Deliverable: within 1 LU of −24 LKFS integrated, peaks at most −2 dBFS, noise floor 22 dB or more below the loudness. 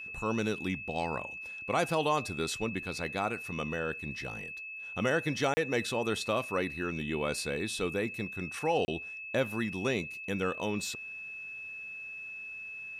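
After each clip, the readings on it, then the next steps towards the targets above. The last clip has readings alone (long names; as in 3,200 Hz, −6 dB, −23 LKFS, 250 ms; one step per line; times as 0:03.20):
number of dropouts 2; longest dropout 30 ms; interfering tone 2,600 Hz; level of the tone −40 dBFS; integrated loudness −33.5 LKFS; sample peak −15.5 dBFS; target loudness −24.0 LKFS
→ repair the gap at 0:05.54/0:08.85, 30 ms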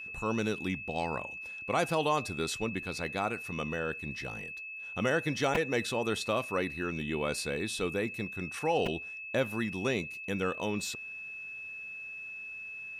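number of dropouts 0; interfering tone 2,600 Hz; level of the tone −40 dBFS
→ notch filter 2,600 Hz, Q 30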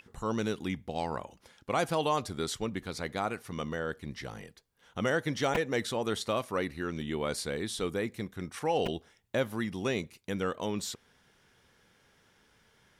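interfering tone none found; integrated loudness −33.5 LKFS; sample peak −16.0 dBFS; target loudness −24.0 LKFS
→ level +9.5 dB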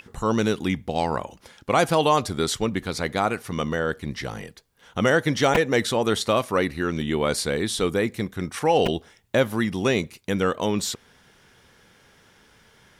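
integrated loudness −24.0 LKFS; sample peak −6.5 dBFS; background noise floor −57 dBFS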